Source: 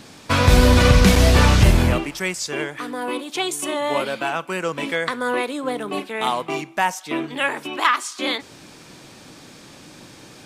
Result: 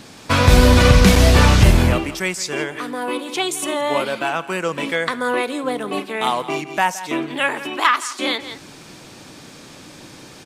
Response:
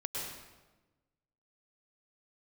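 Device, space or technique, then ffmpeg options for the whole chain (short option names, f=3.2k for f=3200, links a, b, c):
ducked delay: -filter_complex "[0:a]asplit=3[a][b][c];[b]adelay=168,volume=-6dB[d];[c]apad=whole_len=468396[e];[d][e]sidechaincompress=threshold=-37dB:ratio=4:attack=11:release=176[f];[a][f]amix=inputs=2:normalize=0,volume=2dB"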